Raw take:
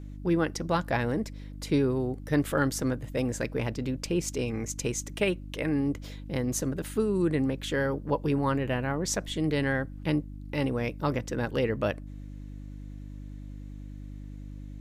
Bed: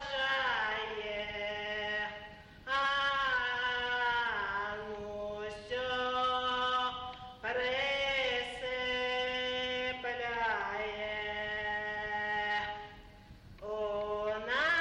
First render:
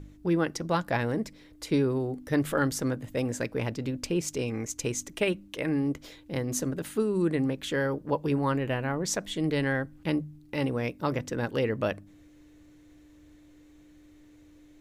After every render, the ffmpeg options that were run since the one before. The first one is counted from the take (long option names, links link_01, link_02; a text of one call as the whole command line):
ffmpeg -i in.wav -af "bandreject=frequency=50:width_type=h:width=4,bandreject=frequency=100:width_type=h:width=4,bandreject=frequency=150:width_type=h:width=4,bandreject=frequency=200:width_type=h:width=4,bandreject=frequency=250:width_type=h:width=4" out.wav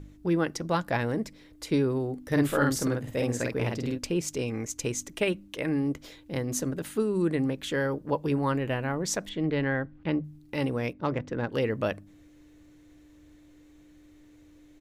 ffmpeg -i in.wav -filter_complex "[0:a]asplit=3[link_01][link_02][link_03];[link_01]afade=type=out:start_time=2.29:duration=0.02[link_04];[link_02]asplit=2[link_05][link_06];[link_06]adelay=49,volume=-2.5dB[link_07];[link_05][link_07]amix=inputs=2:normalize=0,afade=type=in:start_time=2.29:duration=0.02,afade=type=out:start_time=3.97:duration=0.02[link_08];[link_03]afade=type=in:start_time=3.97:duration=0.02[link_09];[link_04][link_08][link_09]amix=inputs=3:normalize=0,asettb=1/sr,asplit=3[link_10][link_11][link_12];[link_10]atrim=end=9.294[link_13];[link_11]atrim=start=9.29:end=10.24,asetpts=PTS-STARTPTS,afade=type=in:duration=0.004:curve=qsin,afade=type=out:start_time=0.946:duration=0.004:curve=qsin,lowpass=2900[link_14];[link_12]atrim=start=10.236[link_15];[link_13][link_14]acrossfade=duration=0.004:curve1=hsin:curve2=qsin[link_16];[link_16][link_15]acrossfade=duration=0.004:curve1=qsin:curve2=hsin,asettb=1/sr,asplit=3[link_17][link_18][link_19];[link_17]atrim=end=10.934[link_20];[link_18]atrim=start=10.93:end=11.52,asetpts=PTS-STARTPTS,afade=type=in:duration=0.004:curve=qsin,afade=type=out:start_time=0.586:duration=0.004:curve=qsin,adynamicsmooth=sensitivity=1.5:basefreq=2900[link_21];[link_19]atrim=start=11.516[link_22];[link_20][link_21]acrossfade=duration=0.004:curve1=hsin:curve2=qsin[link_23];[link_23][link_22]acrossfade=duration=0.004:curve1=qsin:curve2=hsin" out.wav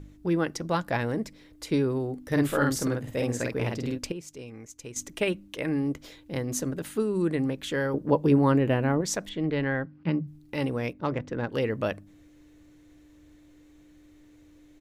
ffmpeg -i in.wav -filter_complex "[0:a]asettb=1/sr,asplit=3[link_01][link_02][link_03];[link_01]atrim=end=7.944[link_04];[link_02]atrim=start=7.94:end=9.01,asetpts=PTS-STARTPTS,afade=type=in:duration=0.004:curve=qsin,afade=type=out:start_time=1.066:duration=0.004:curve=qsin,equalizer=frequency=250:width=0.4:gain=7.5[link_05];[link_03]atrim=start=9.006[link_06];[link_04][link_05]acrossfade=duration=0.004:curve1=hsin:curve2=qsin[link_07];[link_07][link_06]acrossfade=duration=0.004:curve1=qsin:curve2=hsin,asplit=3[link_08][link_09][link_10];[link_08]afade=type=out:start_time=9.84:duration=0.02[link_11];[link_09]highpass=120,equalizer=frequency=170:width_type=q:width=4:gain=9,equalizer=frequency=470:width_type=q:width=4:gain=-4,equalizer=frequency=720:width_type=q:width=4:gain=-5,equalizer=frequency=1800:width_type=q:width=4:gain=-3,equalizer=frequency=3500:width_type=q:width=4:gain=-6,equalizer=frequency=5000:width_type=q:width=4:gain=4,lowpass=frequency=5800:width=0.5412,lowpass=frequency=5800:width=1.3066,afade=type=in:start_time=9.84:duration=0.02,afade=type=out:start_time=10.26:duration=0.02[link_12];[link_10]afade=type=in:start_time=10.26:duration=0.02[link_13];[link_11][link_12][link_13]amix=inputs=3:normalize=0,asplit=3[link_14][link_15][link_16];[link_14]atrim=end=4.122[link_17];[link_15]atrim=start=4.118:end=4.962,asetpts=PTS-STARTPTS,volume=-11dB[link_18];[link_16]atrim=start=4.958[link_19];[link_17][link_18]acrossfade=duration=0.004:curve1=hsin:curve2=hsin[link_20];[link_20][link_19]acrossfade=duration=0.004:curve1=hsin:curve2=hsin" out.wav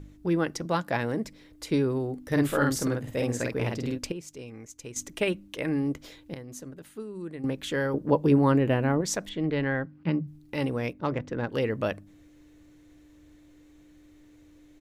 ffmpeg -i in.wav -filter_complex "[0:a]asettb=1/sr,asplit=3[link_01][link_02][link_03];[link_01]atrim=end=0.654[link_04];[link_02]atrim=start=0.65:end=1.25,asetpts=PTS-STARTPTS,afade=type=in:duration=0.004:curve=qsin,afade=type=out:start_time=0.596:duration=0.004:curve=qsin,highpass=110[link_05];[link_03]atrim=start=1.246[link_06];[link_04][link_05]acrossfade=duration=0.004:curve1=hsin:curve2=qsin[link_07];[link_07][link_06]acrossfade=duration=0.004:curve1=qsin:curve2=hsin,asplit=3[link_08][link_09][link_10];[link_08]atrim=end=6.342[link_11];[link_09]atrim=start=6.338:end=7.442,asetpts=PTS-STARTPTS,volume=-11.5dB[link_12];[link_10]atrim=start=7.438[link_13];[link_11][link_12]acrossfade=duration=0.004:curve1=hsin:curve2=hsin[link_14];[link_14][link_13]acrossfade=duration=0.004:curve1=hsin:curve2=hsin" out.wav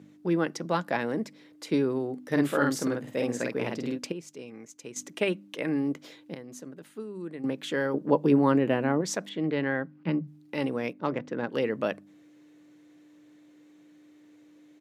ffmpeg -i in.wav -af "highpass=frequency=160:width=0.5412,highpass=frequency=160:width=1.3066,highshelf=frequency=7400:gain=-7" out.wav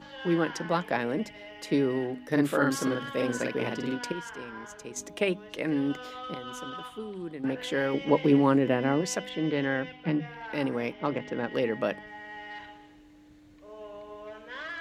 ffmpeg -i in.wav -i bed.wav -filter_complex "[1:a]volume=-8.5dB[link_01];[0:a][link_01]amix=inputs=2:normalize=0" out.wav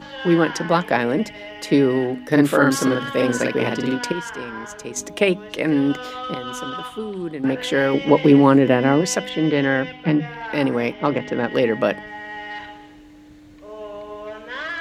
ffmpeg -i in.wav -af "volume=9.5dB,alimiter=limit=-2dB:level=0:latency=1" out.wav